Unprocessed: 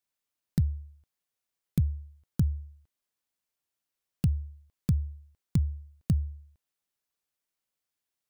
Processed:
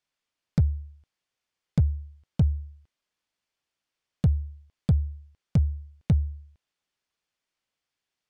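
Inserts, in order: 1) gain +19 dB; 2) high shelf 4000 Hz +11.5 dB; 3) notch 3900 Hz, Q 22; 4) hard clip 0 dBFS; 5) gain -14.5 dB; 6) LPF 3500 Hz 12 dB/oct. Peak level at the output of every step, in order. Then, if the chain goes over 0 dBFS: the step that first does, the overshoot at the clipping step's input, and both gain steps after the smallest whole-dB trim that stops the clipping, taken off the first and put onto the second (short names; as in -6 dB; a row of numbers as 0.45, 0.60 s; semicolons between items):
+5.0, +9.0, +9.0, 0.0, -14.5, -14.5 dBFS; step 1, 9.0 dB; step 1 +10 dB, step 5 -5.5 dB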